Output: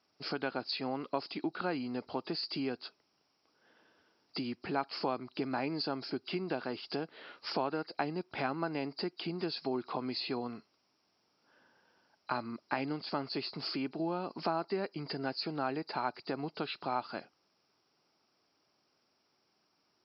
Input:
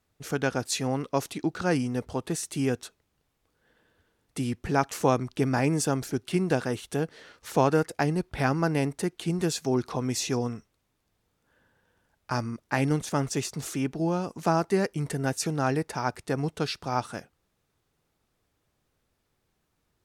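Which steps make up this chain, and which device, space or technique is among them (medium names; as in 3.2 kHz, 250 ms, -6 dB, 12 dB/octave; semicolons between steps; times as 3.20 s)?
hearing aid with frequency lowering (knee-point frequency compression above 3.8 kHz 4:1; compression 3:1, threshold -34 dBFS, peak gain reduction 13.5 dB; cabinet simulation 290–6700 Hz, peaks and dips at 480 Hz -6 dB, 1.8 kHz -6 dB, 4 kHz -9 dB); trim +3.5 dB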